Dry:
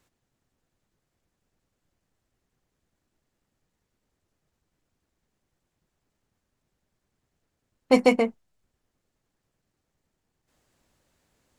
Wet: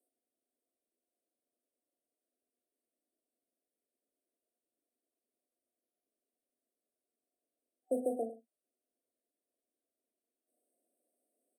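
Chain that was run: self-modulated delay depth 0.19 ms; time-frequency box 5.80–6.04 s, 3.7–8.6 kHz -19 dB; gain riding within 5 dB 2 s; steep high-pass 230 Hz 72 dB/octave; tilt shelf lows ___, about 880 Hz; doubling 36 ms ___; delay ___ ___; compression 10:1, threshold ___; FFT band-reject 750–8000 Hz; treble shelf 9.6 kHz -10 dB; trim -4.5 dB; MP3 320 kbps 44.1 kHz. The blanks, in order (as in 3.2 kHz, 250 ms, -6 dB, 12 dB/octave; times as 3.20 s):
-6.5 dB, -8.5 dB, 102 ms, -16.5 dB, -22 dBFS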